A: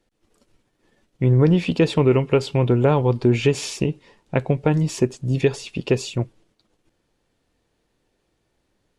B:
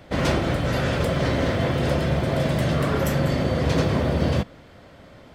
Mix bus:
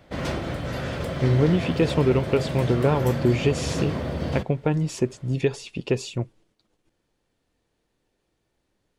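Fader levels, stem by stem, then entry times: -4.0 dB, -6.5 dB; 0.00 s, 0.00 s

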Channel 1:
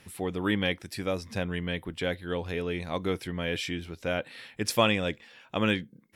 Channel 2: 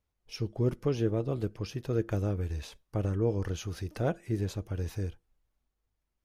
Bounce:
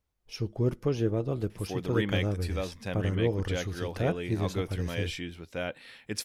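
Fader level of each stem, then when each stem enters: -4.0 dB, +1.0 dB; 1.50 s, 0.00 s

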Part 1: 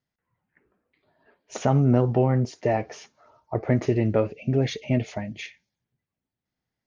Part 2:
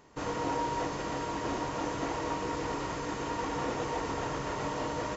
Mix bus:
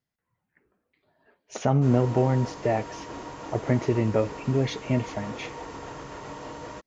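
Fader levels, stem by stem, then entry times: -1.5 dB, -5.0 dB; 0.00 s, 1.65 s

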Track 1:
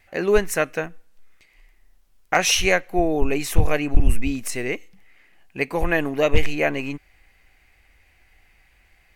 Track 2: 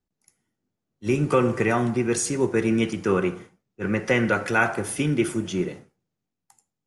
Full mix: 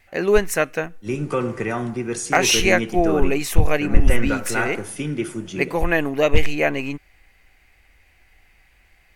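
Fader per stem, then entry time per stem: +1.5 dB, -3.0 dB; 0.00 s, 0.00 s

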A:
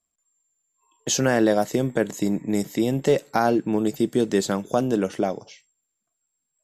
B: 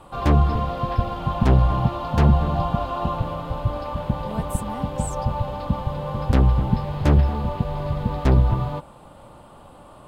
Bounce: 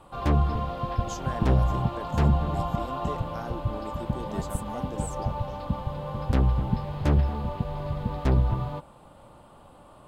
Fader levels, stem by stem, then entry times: -18.0 dB, -5.5 dB; 0.00 s, 0.00 s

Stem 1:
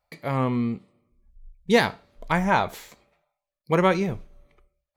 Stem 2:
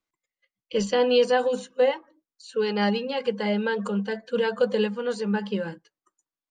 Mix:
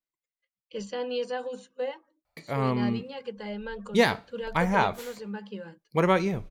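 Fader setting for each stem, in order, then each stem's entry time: -2.5 dB, -11.0 dB; 2.25 s, 0.00 s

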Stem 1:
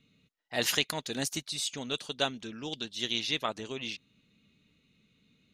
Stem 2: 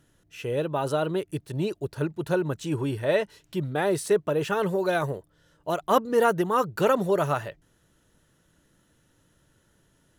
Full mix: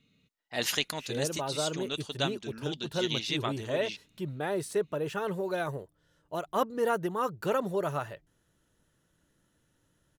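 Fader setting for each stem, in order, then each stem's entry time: -1.5 dB, -7.0 dB; 0.00 s, 0.65 s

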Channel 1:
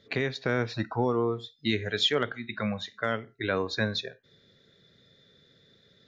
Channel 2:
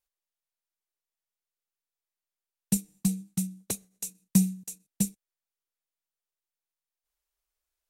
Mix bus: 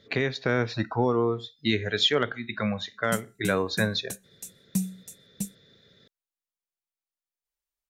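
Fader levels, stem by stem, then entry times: +2.5 dB, -5.5 dB; 0.00 s, 0.40 s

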